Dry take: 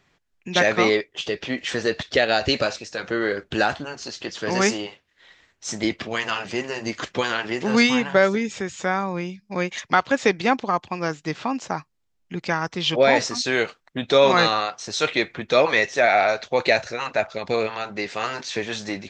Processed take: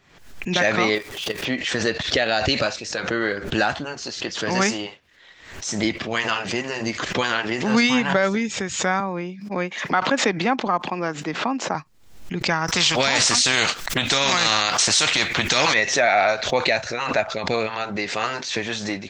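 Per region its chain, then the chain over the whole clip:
0:00.95–0:01.45: converter with a step at zero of −33.5 dBFS + output level in coarse steps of 11 dB
0:09.00–0:11.75: high-pass filter 180 Hz 24 dB per octave + high-shelf EQ 3,400 Hz −12 dB
0:12.68–0:15.74: high-shelf EQ 2,000 Hz +11 dB + every bin compressed towards the loudest bin 2 to 1
whole clip: dynamic equaliser 420 Hz, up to −5 dB, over −32 dBFS, Q 2; boost into a limiter +9 dB; background raised ahead of every attack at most 76 dB per second; level −7 dB

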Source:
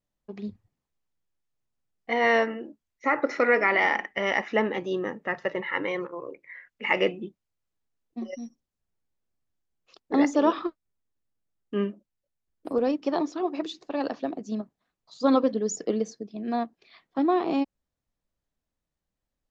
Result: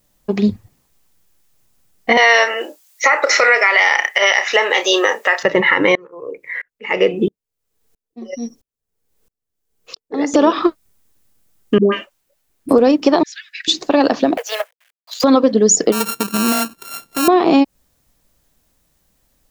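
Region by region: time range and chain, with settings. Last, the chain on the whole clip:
0:02.17–0:05.43: high-pass filter 480 Hz 24 dB per octave + high-shelf EQ 2,200 Hz +11.5 dB + double-tracking delay 30 ms −12 dB
0:05.95–0:10.34: parametric band 450 Hz +11.5 dB 0.27 octaves + tremolo with a ramp in dB swelling 1.5 Hz, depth 33 dB
0:11.78–0:12.69: bass and treble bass −9 dB, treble −4 dB + all-pass dispersion highs, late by 146 ms, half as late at 650 Hz
0:13.23–0:13.68: Butterworth high-pass 1,600 Hz 96 dB per octave + high-shelf EQ 2,700 Hz −11.5 dB
0:14.37–0:15.24: mu-law and A-law mismatch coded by A + Butterworth high-pass 470 Hz 96 dB per octave + flat-topped bell 2,200 Hz +11 dB 1.3 octaves
0:15.92–0:17.28: samples sorted by size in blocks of 32 samples + downward compressor 3 to 1, threshold −36 dBFS
whole clip: high-shelf EQ 6,500 Hz +11 dB; downward compressor 6 to 1, threshold −29 dBFS; boost into a limiter +22 dB; level −1 dB

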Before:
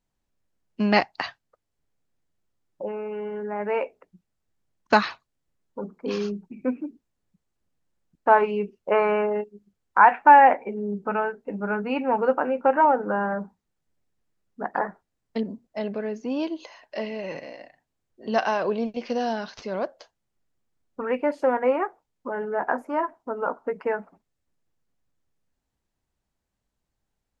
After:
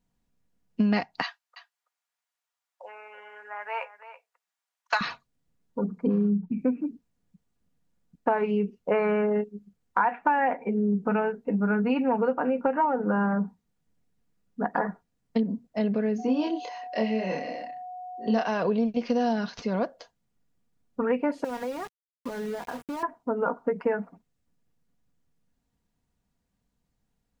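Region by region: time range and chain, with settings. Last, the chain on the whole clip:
0:01.23–0:05.01: high-pass filter 830 Hz 24 dB per octave + single-tap delay 330 ms −14.5 dB
0:05.91–0:06.58: treble cut that deepens with the level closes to 910 Hz, closed at −27 dBFS + parametric band 180 Hz +7.5 dB 0.75 octaves
0:16.18–0:18.47: high-pass filter 200 Hz + steady tone 730 Hz −40 dBFS + double-tracking delay 27 ms −2.5 dB
0:21.44–0:23.03: downward compressor, threshold −33 dBFS + centre clipping without the shift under −41 dBFS
whole clip: parametric band 140 Hz +9.5 dB 1.6 octaves; comb filter 4.2 ms, depth 38%; downward compressor 6 to 1, threshold −21 dBFS

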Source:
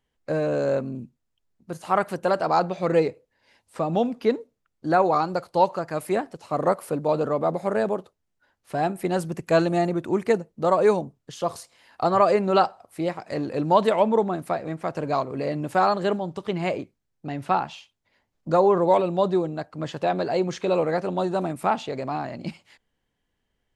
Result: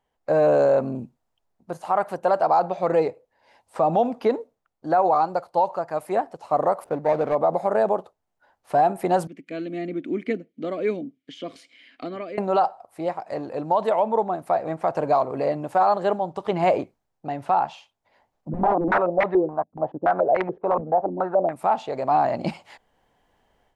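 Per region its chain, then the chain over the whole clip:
0:06.84–0:07.35: running median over 41 samples + high-shelf EQ 7,300 Hz −5.5 dB
0:09.27–0:12.38: formant filter i + one half of a high-frequency compander encoder only
0:18.49–0:21.53: mu-law and A-law mismatch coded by A + wrap-around overflow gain 14.5 dB + low-pass on a step sequencer 7 Hz 220–2,000 Hz
whole clip: parametric band 770 Hz +13.5 dB 1.4 octaves; automatic gain control; brickwall limiter −7 dBFS; level −4 dB

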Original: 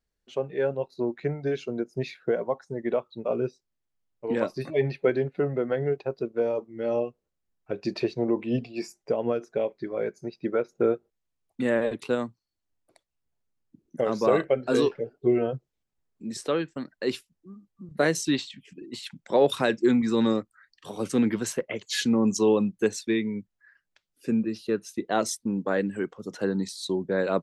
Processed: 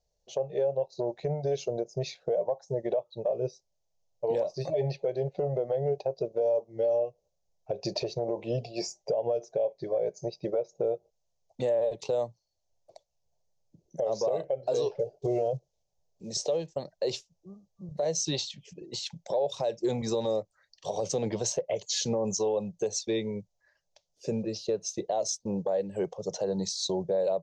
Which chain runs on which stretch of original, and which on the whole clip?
0:14.99–0:16.69: one scale factor per block 7 bits + parametric band 1,400 Hz −7.5 dB 0.38 octaves
whole clip: drawn EQ curve 170 Hz 0 dB, 250 Hz −17 dB, 590 Hz +11 dB, 850 Hz +4 dB, 1,400 Hz −18 dB, 6,400 Hz +8 dB, 10,000 Hz −22 dB; downward compressor 6 to 1, threshold −26 dBFS; brickwall limiter −23.5 dBFS; level +3.5 dB

